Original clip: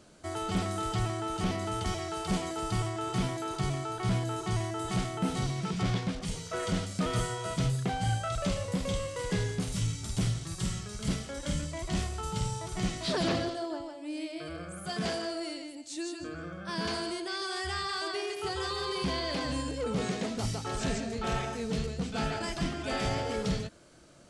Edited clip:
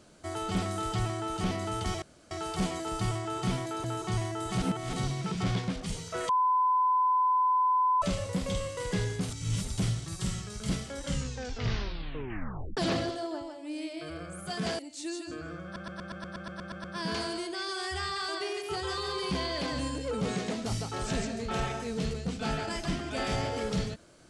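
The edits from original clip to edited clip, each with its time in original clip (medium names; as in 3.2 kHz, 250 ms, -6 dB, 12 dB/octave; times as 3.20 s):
2.02 s: insert room tone 0.29 s
3.55–4.23 s: delete
5.01–5.32 s: reverse
6.68–8.41 s: bleep 1.01 kHz -22 dBFS
9.69–10.07 s: reverse
11.43 s: tape stop 1.73 s
15.18–15.72 s: delete
16.57 s: stutter 0.12 s, 11 plays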